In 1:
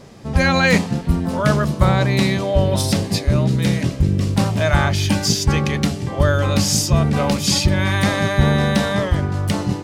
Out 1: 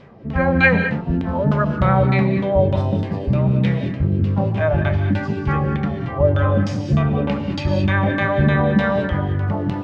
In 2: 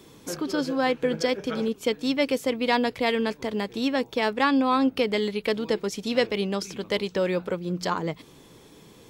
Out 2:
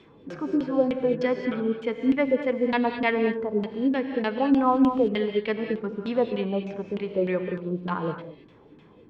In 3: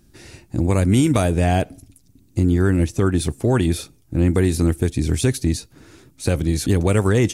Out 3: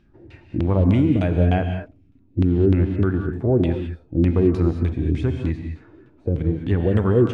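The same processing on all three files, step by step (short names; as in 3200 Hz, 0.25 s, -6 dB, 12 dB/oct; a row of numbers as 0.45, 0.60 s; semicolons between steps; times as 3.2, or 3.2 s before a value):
LFO low-pass saw down 3.3 Hz 230–3300 Hz; non-linear reverb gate 0.24 s rising, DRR 8.5 dB; harmonic-percussive split harmonic +8 dB; gain -9 dB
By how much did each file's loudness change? -1.0, +0.5, -1.0 LU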